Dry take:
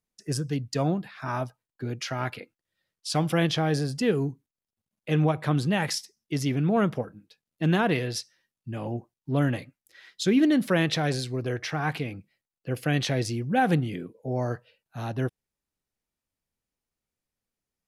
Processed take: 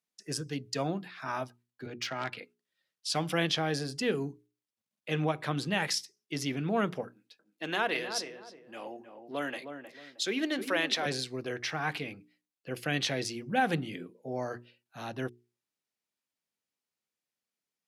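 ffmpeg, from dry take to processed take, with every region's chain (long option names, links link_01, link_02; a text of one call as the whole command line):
ffmpeg -i in.wav -filter_complex "[0:a]asettb=1/sr,asplit=3[link_01][link_02][link_03];[link_01]atrim=end=1.864[link_04];[link_02]atrim=start=1.86:end=2.37,asetpts=PTS-STARTPTS,afade=type=in:duration=0.004:curve=qsin,afade=type=out:start_time=0.506:duration=0.004:curve=qsin,highpass=frequency=83:width=0.5412,highpass=frequency=83:width=1.3066,aeval=exprs='0.0944*(abs(mod(val(0)/0.0944+3,4)-2)-1)':channel_layout=same,adynamicsmooth=sensitivity=6.5:basefreq=4300[link_05];[link_03]atrim=start=2.366[link_06];[link_04][link_05]acrossfade=duration=0.004:curve1=hsin:curve2=qsin[link_07];[link_07][link_06]acrossfade=duration=0.004:curve1=qsin:curve2=hsin,asettb=1/sr,asplit=3[link_08][link_09][link_10];[link_08]atrim=end=7.084[link_11];[link_09]atrim=start=7.08:end=11.06,asetpts=PTS-STARTPTS,afade=type=in:duration=0.004:curve=qsin,afade=type=out:start_time=3.976:duration=0.004:curve=qsin,highpass=380,asplit=2[link_12][link_13];[link_13]adelay=312,lowpass=frequency=1100:poles=1,volume=-7dB,asplit=2[link_14][link_15];[link_15]adelay=312,lowpass=frequency=1100:poles=1,volume=0.32,asplit=2[link_16][link_17];[link_17]adelay=312,lowpass=frequency=1100:poles=1,volume=0.32,asplit=2[link_18][link_19];[link_19]adelay=312,lowpass=frequency=1100:poles=1,volume=0.32[link_20];[link_12][link_14][link_16][link_18][link_20]amix=inputs=5:normalize=0,atrim=end_sample=175518[link_21];[link_10]atrim=start=11.056[link_22];[link_11][link_21]acrossfade=duration=0.004:curve1=hsin:curve2=qsin[link_23];[link_23][link_22]acrossfade=duration=0.004:curve1=qsin:curve2=hsin,highpass=170,equalizer=frequency=3500:width=0.41:gain=5.5,bandreject=frequency=60:width_type=h:width=6,bandreject=frequency=120:width_type=h:width=6,bandreject=frequency=180:width_type=h:width=6,bandreject=frequency=240:width_type=h:width=6,bandreject=frequency=300:width_type=h:width=6,bandreject=frequency=360:width_type=h:width=6,bandreject=frequency=420:width_type=h:width=6,volume=-5.5dB" out.wav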